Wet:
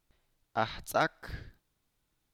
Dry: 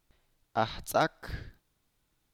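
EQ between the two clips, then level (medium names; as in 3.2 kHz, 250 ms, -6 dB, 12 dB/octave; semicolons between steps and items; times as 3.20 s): dynamic bell 1.9 kHz, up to +6 dB, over -45 dBFS, Q 1.3; -3.0 dB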